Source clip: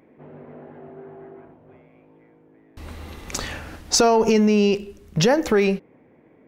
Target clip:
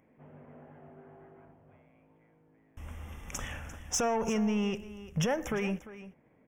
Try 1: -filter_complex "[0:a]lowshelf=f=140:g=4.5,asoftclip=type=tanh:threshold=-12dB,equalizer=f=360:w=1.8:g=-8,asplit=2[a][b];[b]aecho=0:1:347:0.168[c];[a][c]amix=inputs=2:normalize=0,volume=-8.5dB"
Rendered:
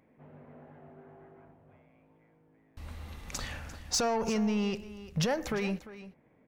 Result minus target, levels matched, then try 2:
4000 Hz band +4.0 dB
-filter_complex "[0:a]lowshelf=f=140:g=4.5,asoftclip=type=tanh:threshold=-12dB,asuperstop=centerf=4300:order=8:qfactor=2.3,equalizer=f=360:w=1.8:g=-8,asplit=2[a][b];[b]aecho=0:1:347:0.168[c];[a][c]amix=inputs=2:normalize=0,volume=-8.5dB"

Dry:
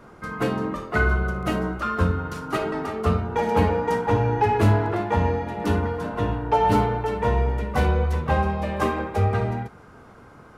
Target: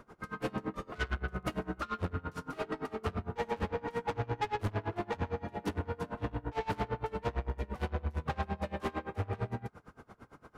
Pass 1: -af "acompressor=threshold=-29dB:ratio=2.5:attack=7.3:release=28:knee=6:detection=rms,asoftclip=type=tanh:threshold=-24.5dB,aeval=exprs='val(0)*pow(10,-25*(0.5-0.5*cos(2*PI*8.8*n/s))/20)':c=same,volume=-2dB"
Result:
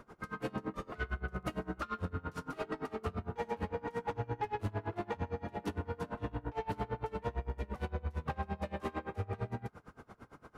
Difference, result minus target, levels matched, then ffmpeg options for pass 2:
compressor: peak gain reduction +10.5 dB
-af "asoftclip=type=tanh:threshold=-24.5dB,aeval=exprs='val(0)*pow(10,-25*(0.5-0.5*cos(2*PI*8.8*n/s))/20)':c=same,volume=-2dB"

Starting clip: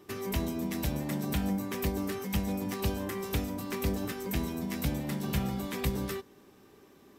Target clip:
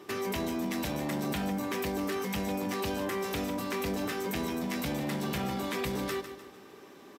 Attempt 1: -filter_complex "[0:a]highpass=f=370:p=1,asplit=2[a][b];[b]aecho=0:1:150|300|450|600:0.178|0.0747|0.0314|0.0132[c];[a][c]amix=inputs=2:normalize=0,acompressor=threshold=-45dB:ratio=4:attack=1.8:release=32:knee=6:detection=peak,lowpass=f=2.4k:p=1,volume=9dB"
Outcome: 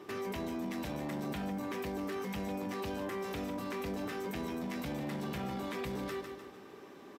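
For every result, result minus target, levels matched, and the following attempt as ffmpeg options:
compressor: peak gain reduction +5 dB; 4000 Hz band -3.0 dB
-filter_complex "[0:a]highpass=f=370:p=1,asplit=2[a][b];[b]aecho=0:1:150|300|450|600:0.178|0.0747|0.0314|0.0132[c];[a][c]amix=inputs=2:normalize=0,acompressor=threshold=-38dB:ratio=4:attack=1.8:release=32:knee=6:detection=peak,lowpass=f=2.4k:p=1,volume=9dB"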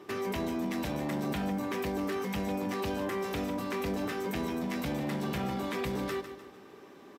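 4000 Hz band -3.0 dB
-filter_complex "[0:a]highpass=f=370:p=1,asplit=2[a][b];[b]aecho=0:1:150|300|450|600:0.178|0.0747|0.0314|0.0132[c];[a][c]amix=inputs=2:normalize=0,acompressor=threshold=-38dB:ratio=4:attack=1.8:release=32:knee=6:detection=peak,lowpass=f=5.5k:p=1,volume=9dB"

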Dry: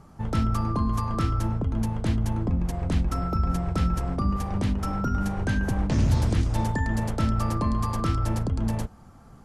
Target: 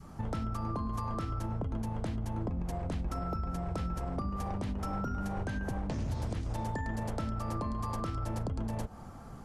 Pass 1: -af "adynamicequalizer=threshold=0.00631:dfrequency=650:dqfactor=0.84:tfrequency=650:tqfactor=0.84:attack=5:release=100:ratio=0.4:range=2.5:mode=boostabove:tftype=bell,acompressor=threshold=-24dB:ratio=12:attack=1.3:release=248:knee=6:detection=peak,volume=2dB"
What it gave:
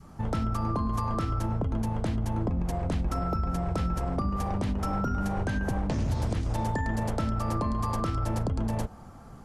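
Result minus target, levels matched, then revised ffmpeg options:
compressor: peak gain reduction -6.5 dB
-af "adynamicequalizer=threshold=0.00631:dfrequency=650:dqfactor=0.84:tfrequency=650:tqfactor=0.84:attack=5:release=100:ratio=0.4:range=2.5:mode=boostabove:tftype=bell,acompressor=threshold=-31dB:ratio=12:attack=1.3:release=248:knee=6:detection=peak,volume=2dB"

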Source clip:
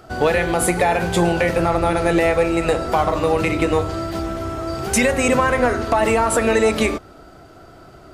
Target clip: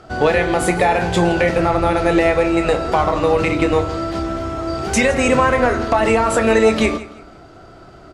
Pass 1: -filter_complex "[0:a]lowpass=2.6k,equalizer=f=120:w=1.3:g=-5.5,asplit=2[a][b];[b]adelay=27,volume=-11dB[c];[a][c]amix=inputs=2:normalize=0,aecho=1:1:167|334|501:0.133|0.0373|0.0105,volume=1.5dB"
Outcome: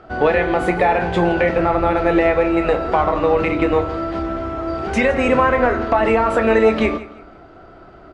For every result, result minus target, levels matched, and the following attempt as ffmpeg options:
8000 Hz band -15.0 dB; 125 Hz band -2.5 dB
-filter_complex "[0:a]lowpass=7.2k,equalizer=f=120:w=1.3:g=-5.5,asplit=2[a][b];[b]adelay=27,volume=-11dB[c];[a][c]amix=inputs=2:normalize=0,aecho=1:1:167|334|501:0.133|0.0373|0.0105,volume=1.5dB"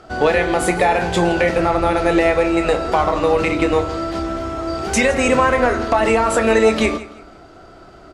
125 Hz band -3.0 dB
-filter_complex "[0:a]lowpass=7.2k,asplit=2[a][b];[b]adelay=27,volume=-11dB[c];[a][c]amix=inputs=2:normalize=0,aecho=1:1:167|334|501:0.133|0.0373|0.0105,volume=1.5dB"

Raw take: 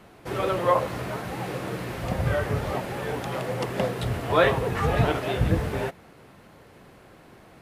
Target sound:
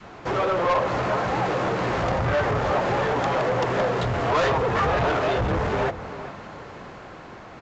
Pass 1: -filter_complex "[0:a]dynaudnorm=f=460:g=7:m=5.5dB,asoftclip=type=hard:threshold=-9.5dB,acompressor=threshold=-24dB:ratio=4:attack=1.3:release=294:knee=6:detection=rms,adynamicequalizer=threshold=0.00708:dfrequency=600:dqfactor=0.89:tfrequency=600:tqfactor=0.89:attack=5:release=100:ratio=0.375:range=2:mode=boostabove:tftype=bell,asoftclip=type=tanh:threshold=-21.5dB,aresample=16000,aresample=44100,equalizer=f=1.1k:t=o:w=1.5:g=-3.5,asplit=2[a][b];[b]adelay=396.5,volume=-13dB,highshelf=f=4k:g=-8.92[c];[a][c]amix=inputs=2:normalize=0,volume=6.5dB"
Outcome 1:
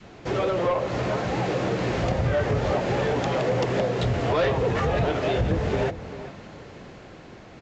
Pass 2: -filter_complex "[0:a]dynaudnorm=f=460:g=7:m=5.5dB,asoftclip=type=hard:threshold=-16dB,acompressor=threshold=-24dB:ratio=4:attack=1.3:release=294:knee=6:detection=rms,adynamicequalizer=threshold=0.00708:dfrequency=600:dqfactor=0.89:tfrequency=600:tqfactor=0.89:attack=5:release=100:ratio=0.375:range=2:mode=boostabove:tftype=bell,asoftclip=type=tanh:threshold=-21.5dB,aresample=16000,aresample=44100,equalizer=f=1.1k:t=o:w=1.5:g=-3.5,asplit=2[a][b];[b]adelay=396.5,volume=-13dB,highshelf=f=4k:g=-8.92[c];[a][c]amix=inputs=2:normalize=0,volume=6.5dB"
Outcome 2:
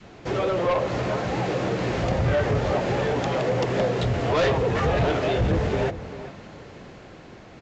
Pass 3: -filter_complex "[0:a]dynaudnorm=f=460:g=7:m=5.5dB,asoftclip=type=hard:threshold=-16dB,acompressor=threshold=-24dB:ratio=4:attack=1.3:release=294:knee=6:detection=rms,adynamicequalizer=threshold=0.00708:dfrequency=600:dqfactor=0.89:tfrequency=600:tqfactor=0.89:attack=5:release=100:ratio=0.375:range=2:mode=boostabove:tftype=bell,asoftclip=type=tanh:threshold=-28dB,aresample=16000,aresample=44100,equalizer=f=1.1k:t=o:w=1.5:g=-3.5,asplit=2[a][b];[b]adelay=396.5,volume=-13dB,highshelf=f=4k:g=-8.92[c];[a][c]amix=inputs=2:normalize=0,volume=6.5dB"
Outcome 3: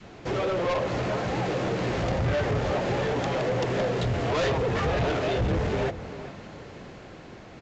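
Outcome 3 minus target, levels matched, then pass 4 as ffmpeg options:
1000 Hz band -4.0 dB
-filter_complex "[0:a]dynaudnorm=f=460:g=7:m=5.5dB,asoftclip=type=hard:threshold=-16dB,acompressor=threshold=-24dB:ratio=4:attack=1.3:release=294:knee=6:detection=rms,adynamicequalizer=threshold=0.00708:dfrequency=600:dqfactor=0.89:tfrequency=600:tqfactor=0.89:attack=5:release=100:ratio=0.375:range=2:mode=boostabove:tftype=bell,asoftclip=type=tanh:threshold=-28dB,aresample=16000,aresample=44100,equalizer=f=1.1k:t=o:w=1.5:g=6,asplit=2[a][b];[b]adelay=396.5,volume=-13dB,highshelf=f=4k:g=-8.92[c];[a][c]amix=inputs=2:normalize=0,volume=6.5dB"

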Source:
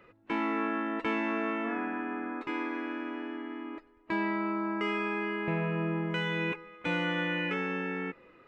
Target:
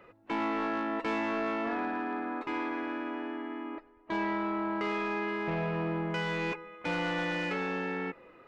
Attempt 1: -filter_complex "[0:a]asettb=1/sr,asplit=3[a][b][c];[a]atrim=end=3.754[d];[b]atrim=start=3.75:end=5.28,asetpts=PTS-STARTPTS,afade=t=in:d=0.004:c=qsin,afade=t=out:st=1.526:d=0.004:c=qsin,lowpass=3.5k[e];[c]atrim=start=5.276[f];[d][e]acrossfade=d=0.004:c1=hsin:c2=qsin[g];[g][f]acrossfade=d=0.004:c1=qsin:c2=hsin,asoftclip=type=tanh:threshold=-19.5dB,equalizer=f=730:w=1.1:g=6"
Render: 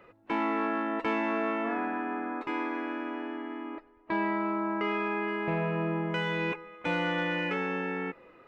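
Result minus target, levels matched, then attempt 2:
soft clip: distortion -12 dB
-filter_complex "[0:a]asettb=1/sr,asplit=3[a][b][c];[a]atrim=end=3.754[d];[b]atrim=start=3.75:end=5.28,asetpts=PTS-STARTPTS,afade=t=in:d=0.004:c=qsin,afade=t=out:st=1.526:d=0.004:c=qsin,lowpass=3.5k[e];[c]atrim=start=5.276[f];[d][e]acrossfade=d=0.004:c1=hsin:c2=qsin[g];[g][f]acrossfade=d=0.004:c1=qsin:c2=hsin,asoftclip=type=tanh:threshold=-28dB,equalizer=f=730:w=1.1:g=6"

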